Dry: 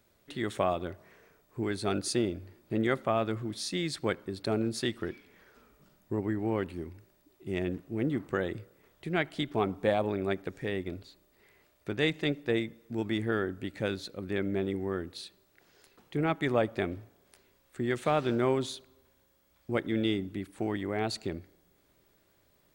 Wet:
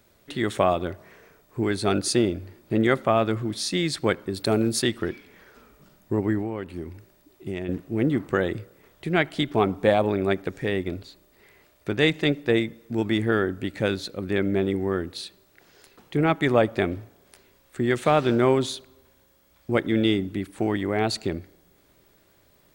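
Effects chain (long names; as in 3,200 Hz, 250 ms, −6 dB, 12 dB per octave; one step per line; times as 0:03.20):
0:04.34–0:04.82: high-shelf EQ 7,600 Hz +10.5 dB
0:06.41–0:07.69: downward compressor 4 to 1, threshold −36 dBFS, peak gain reduction 9.5 dB
level +7.5 dB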